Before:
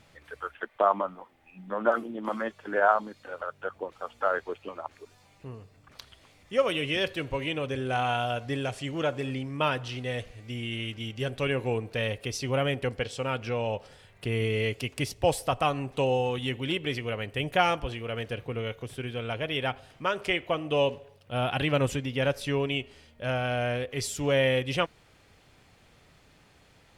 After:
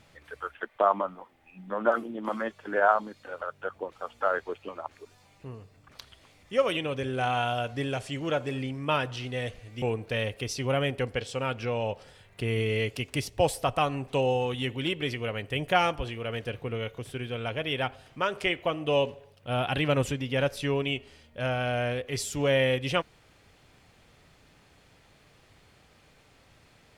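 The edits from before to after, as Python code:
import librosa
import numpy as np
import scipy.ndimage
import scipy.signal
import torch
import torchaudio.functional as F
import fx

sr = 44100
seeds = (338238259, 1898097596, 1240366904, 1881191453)

y = fx.edit(x, sr, fx.cut(start_s=6.77, length_s=0.72),
    fx.cut(start_s=10.54, length_s=1.12), tone=tone)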